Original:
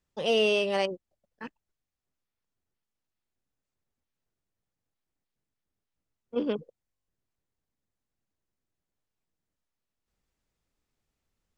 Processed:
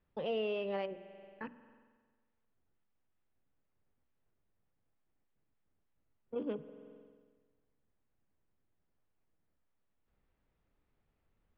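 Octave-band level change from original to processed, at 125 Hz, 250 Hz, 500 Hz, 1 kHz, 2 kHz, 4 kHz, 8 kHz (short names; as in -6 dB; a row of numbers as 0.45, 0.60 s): -8.0 dB, -8.5 dB, -9.5 dB, -9.5 dB, -14.5 dB, -17.0 dB, n/a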